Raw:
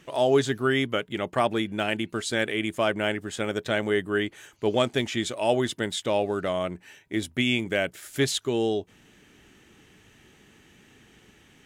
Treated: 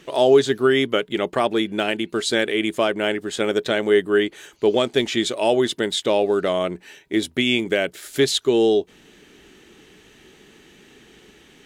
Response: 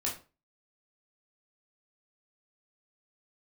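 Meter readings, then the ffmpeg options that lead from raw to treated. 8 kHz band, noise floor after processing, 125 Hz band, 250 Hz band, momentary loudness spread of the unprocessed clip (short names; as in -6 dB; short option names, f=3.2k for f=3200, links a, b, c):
+4.0 dB, -52 dBFS, -1.0 dB, +5.5 dB, 6 LU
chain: -af "alimiter=limit=-13.5dB:level=0:latency=1:release=315,equalizer=f=100:t=o:w=0.67:g=-9,equalizer=f=400:t=o:w=0.67:g=6,equalizer=f=4k:t=o:w=0.67:g=5,volume=4.5dB"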